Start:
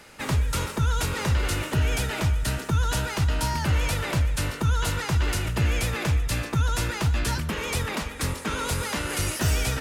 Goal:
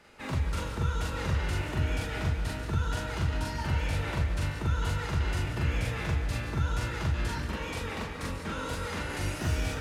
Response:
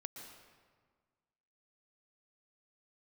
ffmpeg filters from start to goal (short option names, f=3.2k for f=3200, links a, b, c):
-filter_complex "[0:a]highshelf=f=6.4k:g=-12,asplit=2[a][b];[1:a]atrim=start_sample=2205,adelay=42[c];[b][c]afir=irnorm=-1:irlink=0,volume=5dB[d];[a][d]amix=inputs=2:normalize=0,volume=-9dB"